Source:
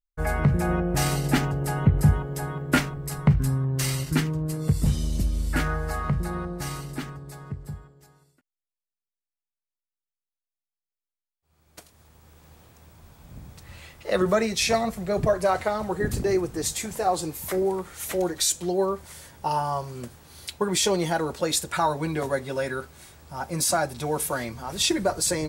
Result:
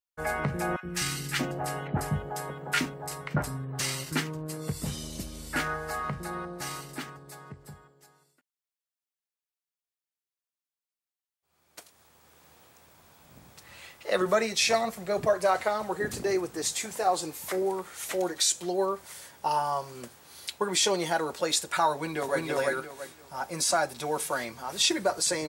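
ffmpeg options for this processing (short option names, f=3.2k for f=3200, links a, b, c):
-filter_complex "[0:a]asettb=1/sr,asplit=3[a][b][c];[a]atrim=end=0.764[d];[b]atrim=start=0.76:end=3.8,asetpts=PTS-STARTPTS,afade=t=in:d=0.004:c=qsin,afade=t=out:st=3.036:d=0.004:c=qsin,acrossover=split=340|1200[e][f][g];[e]adelay=70[h];[f]adelay=630[i];[h][i][g]amix=inputs=3:normalize=0,atrim=end_sample=134064[j];[c]atrim=start=3.796[k];[d][j]acrossfade=d=0.004:c1=hsin:c2=qsin[l];[l][k]acrossfade=d=0.004:c1=qsin:c2=hsin,asplit=2[m][n];[n]afade=t=in:st=21.94:d=0.01,afade=t=out:st=22.45:d=0.01,aecho=0:1:340|680|1020|1360:0.944061|0.236015|0.0590038|0.014751[o];[m][o]amix=inputs=2:normalize=0,highpass=f=490:p=1,acrossover=split=9100[p][q];[q]acompressor=threshold=-42dB:ratio=4:attack=1:release=60[r];[p][r]amix=inputs=2:normalize=0"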